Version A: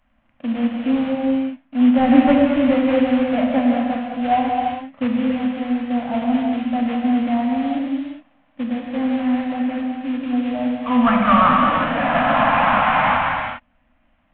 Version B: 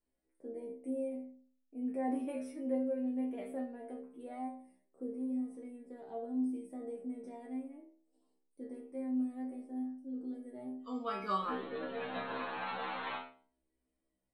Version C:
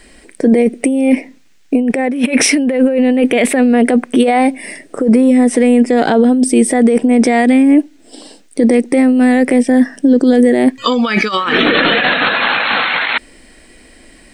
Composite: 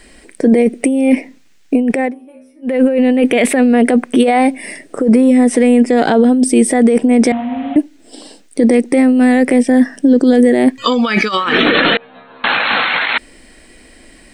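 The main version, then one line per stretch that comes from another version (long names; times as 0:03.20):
C
0:02.10–0:02.67: punch in from B, crossfade 0.10 s
0:07.32–0:07.76: punch in from A
0:11.97–0:12.44: punch in from B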